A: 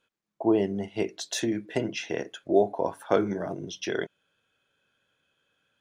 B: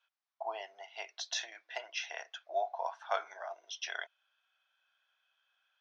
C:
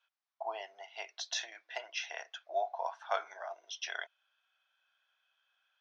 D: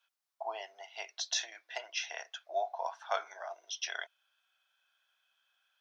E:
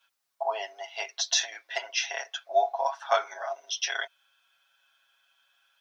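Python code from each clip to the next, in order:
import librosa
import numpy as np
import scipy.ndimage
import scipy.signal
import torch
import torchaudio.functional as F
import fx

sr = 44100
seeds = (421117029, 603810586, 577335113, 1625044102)

y1 = scipy.signal.sosfilt(scipy.signal.cheby1(4, 1.0, [690.0, 5900.0], 'bandpass', fs=sr, output='sos'), x)
y1 = F.gain(torch.from_numpy(y1), -3.0).numpy()
y2 = y1
y3 = fx.bass_treble(y2, sr, bass_db=-4, treble_db=6)
y4 = y3 + 0.83 * np.pad(y3, (int(7.3 * sr / 1000.0), 0))[:len(y3)]
y4 = F.gain(torch.from_numpy(y4), 6.0).numpy()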